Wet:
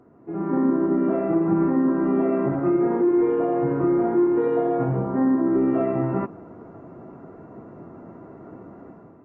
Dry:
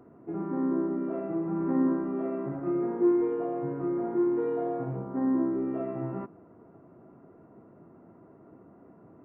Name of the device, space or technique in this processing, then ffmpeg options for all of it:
low-bitrate web radio: -af "dynaudnorm=f=130:g=7:m=11.5dB,alimiter=limit=-13dB:level=0:latency=1:release=177" -ar 48000 -c:a aac -b:a 24k

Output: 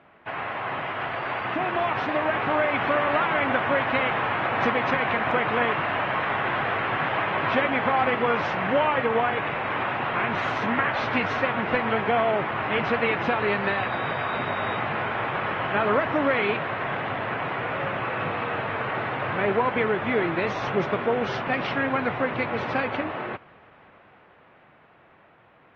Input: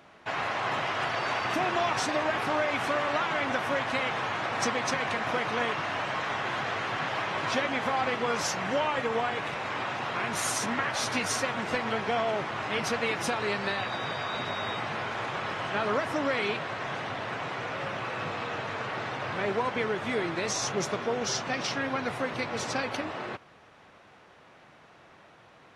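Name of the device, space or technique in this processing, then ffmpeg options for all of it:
action camera in a waterproof case: -af "lowpass=f=2.8k:w=0.5412,lowpass=f=2.8k:w=1.3066,dynaudnorm=f=140:g=31:m=6dB" -ar 48000 -c:a aac -b:a 48k

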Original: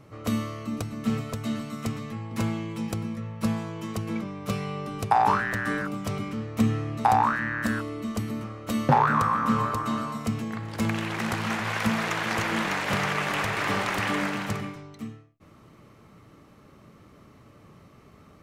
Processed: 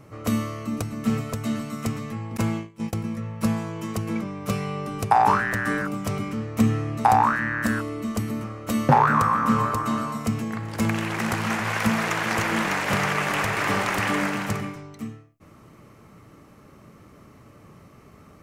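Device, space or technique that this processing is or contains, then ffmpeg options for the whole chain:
exciter from parts: -filter_complex "[0:a]asplit=2[a][b];[b]highpass=f=3.4k:w=0.5412,highpass=f=3.4k:w=1.3066,asoftclip=type=tanh:threshold=-32dB,volume=-6.5dB[c];[a][c]amix=inputs=2:normalize=0,asettb=1/sr,asplit=3[d][e][f];[d]atrim=end=2.374[g];[e]atrim=start=2.37:end=3.04,asetpts=PTS-STARTPTS,afade=t=in:d=0.004:c=qsin,afade=t=out:st=0.666:d=0.004:c=qsin,agate=range=-22dB:threshold=-30dB:ratio=16:detection=peak[h];[f]atrim=start=3.036[i];[g][h]acrossfade=d=0.004:c1=hsin:c2=qsin[j];[j][i]acrossfade=d=0.004:c1=qsin:c2=hsin,volume=3dB"

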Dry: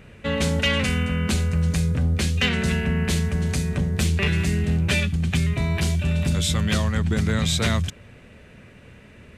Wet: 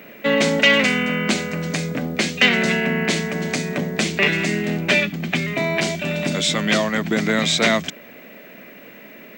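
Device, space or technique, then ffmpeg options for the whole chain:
old television with a line whistle: -filter_complex "[0:a]asettb=1/sr,asplit=3[a][b][c];[a]atrim=end=4.914[d];[b]atrim=start=4.91:end=5.48,asetpts=PTS-STARTPTS,afade=t=in:d=0.004:c=qsin,afade=t=out:st=0.566:d=0.004:c=qsin,highshelf=f=5.6k:g=-9[e];[c]atrim=start=5.476[f];[d][e]acrossfade=d=0.004:c1=hsin:c2=qsin[g];[g][f]acrossfade=d=0.004:c1=qsin:c2=hsin,highpass=f=200:w=0.5412,highpass=f=200:w=1.3066,equalizer=f=300:t=q:w=4:g=4,equalizer=f=650:t=q:w=4:g=7,equalizer=f=2.1k:t=q:w=4:g=6,lowpass=f=7.5k:w=0.5412,lowpass=f=7.5k:w=1.3066,aeval=exprs='val(0)+0.00251*sin(2*PI*15734*n/s)':c=same,volume=5.5dB"

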